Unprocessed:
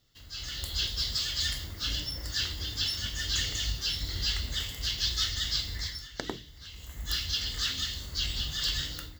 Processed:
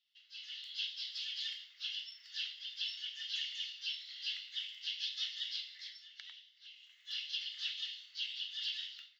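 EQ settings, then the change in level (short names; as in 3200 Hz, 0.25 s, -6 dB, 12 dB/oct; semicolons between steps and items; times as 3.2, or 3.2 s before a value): ladder high-pass 2400 Hz, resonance 50%; air absorption 270 m; bell 5700 Hz +5 dB 0.22 oct; +3.0 dB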